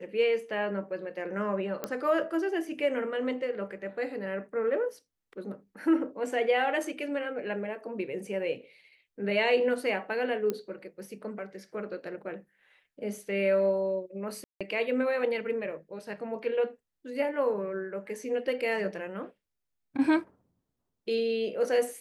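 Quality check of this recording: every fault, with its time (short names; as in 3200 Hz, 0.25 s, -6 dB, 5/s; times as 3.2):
1.84 pop -17 dBFS
10.5 pop -17 dBFS
14.44–14.61 gap 0.166 s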